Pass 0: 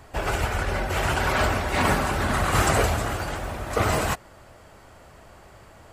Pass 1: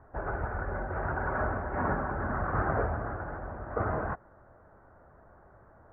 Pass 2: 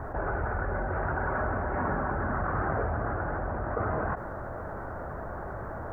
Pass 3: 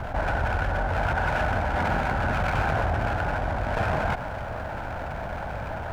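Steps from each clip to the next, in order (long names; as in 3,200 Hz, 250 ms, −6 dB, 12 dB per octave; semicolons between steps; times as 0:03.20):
elliptic low-pass filter 1,600 Hz, stop band 60 dB; level −7 dB
envelope flattener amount 70%; level −2 dB
lower of the sound and its delayed copy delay 1.3 ms; level +6 dB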